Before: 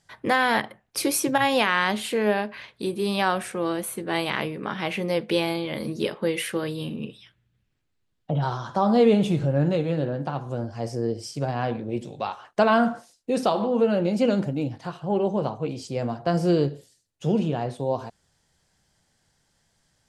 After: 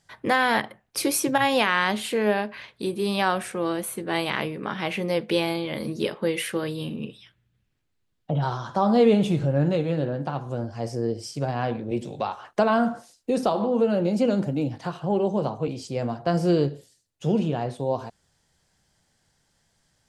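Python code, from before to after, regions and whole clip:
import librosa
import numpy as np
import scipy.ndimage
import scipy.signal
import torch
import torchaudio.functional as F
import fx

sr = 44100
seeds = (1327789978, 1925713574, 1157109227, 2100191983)

y = fx.chain(x, sr, fx.dynamic_eq(hz=2400.0, q=0.77, threshold_db=-39.0, ratio=4.0, max_db=-4),
    fx.band_squash(depth_pct=40), at=(11.91, 15.68))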